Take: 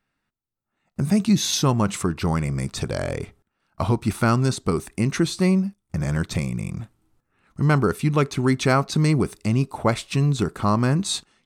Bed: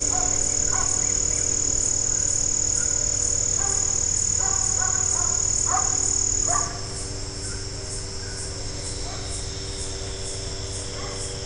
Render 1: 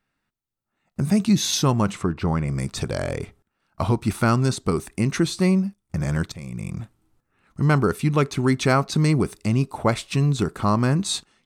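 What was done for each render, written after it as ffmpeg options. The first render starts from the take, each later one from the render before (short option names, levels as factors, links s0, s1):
-filter_complex "[0:a]asplit=3[s0][s1][s2];[s0]afade=t=out:st=1.92:d=0.02[s3];[s1]aemphasis=mode=reproduction:type=75kf,afade=t=in:st=1.92:d=0.02,afade=t=out:st=2.47:d=0.02[s4];[s2]afade=t=in:st=2.47:d=0.02[s5];[s3][s4][s5]amix=inputs=3:normalize=0,asplit=2[s6][s7];[s6]atrim=end=6.32,asetpts=PTS-STARTPTS,afade=t=out:st=6.316:d=0.004:c=hsin:silence=0.0749894[s8];[s7]atrim=start=6.32,asetpts=PTS-STARTPTS,afade=t=in:d=0.41:silence=0.0749894[s9];[s8][s9]concat=n=2:v=0:a=1"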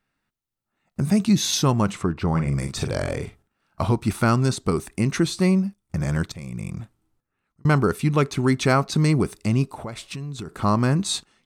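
-filter_complex "[0:a]asettb=1/sr,asplit=3[s0][s1][s2];[s0]atrim=end=2.314[s3];[s1]atrim=start=2.31:end=3.85,asetpts=PTS-STARTPTS,afade=t=in:d=0.004:c=qsin,afade=t=out:st=1.536:d=0.004:c=qsin,asplit=2[s4][s5];[s5]adelay=43,volume=0.447[s6];[s4][s6]amix=inputs=2:normalize=0,atrim=end_sample=67914[s7];[s2]atrim=start=3.846[s8];[s3][s7]acrossfade=d=0.004:c1=hsin:c2=qsin[s9];[s9][s8]acrossfade=d=0.004:c1=qsin:c2=hsin,asettb=1/sr,asplit=3[s10][s11][s12];[s10]atrim=end=9.704[s13];[s11]atrim=start=9.7:end=10.61,asetpts=PTS-STARTPTS,afade=t=in:d=0.004:c=qsin,afade=t=out:st=0.906:d=0.004:c=qsin,acompressor=threshold=0.0282:ratio=4:attack=3.2:release=140:knee=1:detection=peak[s14];[s12]atrim=start=10.606[s15];[s13][s14]acrossfade=d=0.004:c1=hsin:c2=qsin[s16];[s16][s15]acrossfade=d=0.004:c1=qsin:c2=hsin,asplit=2[s17][s18];[s17]atrim=end=7.65,asetpts=PTS-STARTPTS,afade=t=out:st=6.6:d=1.05[s19];[s18]atrim=start=7.65,asetpts=PTS-STARTPTS,afade=t=in:d=0.004:c=hsin[s20];[s19][s20]concat=n=2:v=0:a=1"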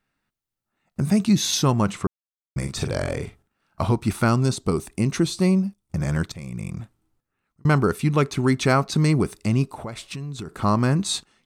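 -filter_complex "[0:a]asettb=1/sr,asplit=3[s0][s1][s2];[s0]atrim=end=4.284[s3];[s1]atrim=start=4.28:end=6,asetpts=PTS-STARTPTS,afade=t=in:d=0.004:c=qsin,afade=t=out:st=1.716:d=0.004:c=qsin,equalizer=f=1700:w=1.5:g=-5[s4];[s2]atrim=start=5.996[s5];[s3][s4]acrossfade=d=0.004:c1=hsin:c2=qsin[s6];[s6][s5]acrossfade=d=0.004:c1=qsin:c2=hsin,asplit=3[s7][s8][s9];[s7]atrim=end=2.07,asetpts=PTS-STARTPTS,afade=t=out:st=2.066:d=0.004:c=hsin[s10];[s8]atrim=start=2.07:end=2.56,asetpts=PTS-STARTPTS,volume=0[s11];[s9]atrim=start=2.56,asetpts=PTS-STARTPTS,afade=t=in:d=0.004:c=hsin[s12];[s10][s11][s12]concat=n=3:v=0:a=1"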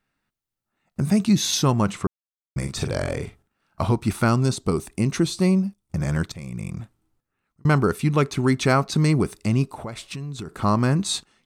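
-af anull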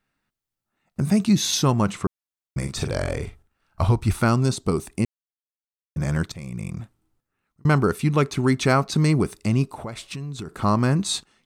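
-filter_complex "[0:a]asettb=1/sr,asplit=3[s0][s1][s2];[s0]atrim=end=2.654[s3];[s1]atrim=start=2.65:end=4.2,asetpts=PTS-STARTPTS,afade=t=in:d=0.004:c=qsin,afade=t=out:st=1.546:d=0.004:c=qsin,asubboost=boost=11.5:cutoff=83[s4];[s2]atrim=start=4.196[s5];[s3][s4]acrossfade=d=0.004:c1=hsin:c2=qsin[s6];[s6][s5]acrossfade=d=0.004:c1=qsin:c2=hsin,asplit=3[s7][s8][s9];[s7]atrim=end=5.05,asetpts=PTS-STARTPTS,afade=t=out:st=5.046:d=0.004:c=hsin[s10];[s8]atrim=start=5.05:end=5.96,asetpts=PTS-STARTPTS,volume=0[s11];[s9]atrim=start=5.96,asetpts=PTS-STARTPTS,afade=t=in:d=0.004:c=hsin[s12];[s10][s11][s12]concat=n=3:v=0:a=1"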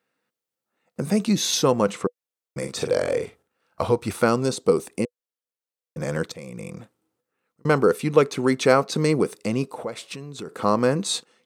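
-af "highpass=210,equalizer=f=490:w=5.6:g=14.5"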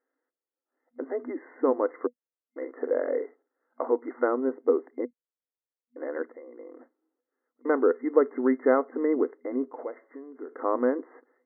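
-af "afftfilt=real='re*between(b*sr/4096,240,2100)':imag='im*between(b*sr/4096,240,2100)':win_size=4096:overlap=0.75,equalizer=f=1600:w=0.33:g=-7.5"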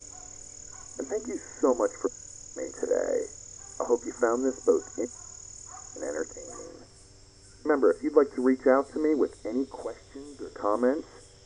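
-filter_complex "[1:a]volume=0.075[s0];[0:a][s0]amix=inputs=2:normalize=0"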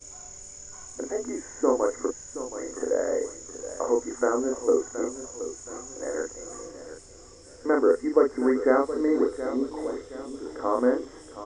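-filter_complex "[0:a]asplit=2[s0][s1];[s1]adelay=36,volume=0.668[s2];[s0][s2]amix=inputs=2:normalize=0,aecho=1:1:722|1444|2166|2888:0.237|0.0925|0.0361|0.0141"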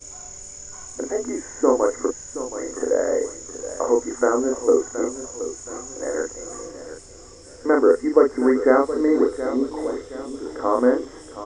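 -af "volume=1.78"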